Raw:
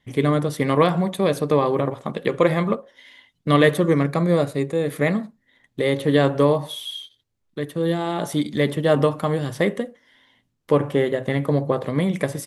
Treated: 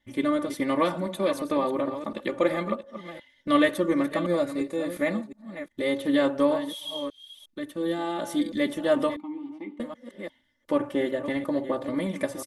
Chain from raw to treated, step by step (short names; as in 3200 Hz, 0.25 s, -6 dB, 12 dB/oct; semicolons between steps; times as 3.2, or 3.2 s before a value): reverse delay 0.355 s, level -11 dB; 9.16–9.8 vowel filter u; comb 3.4 ms, depth 89%; gain -8 dB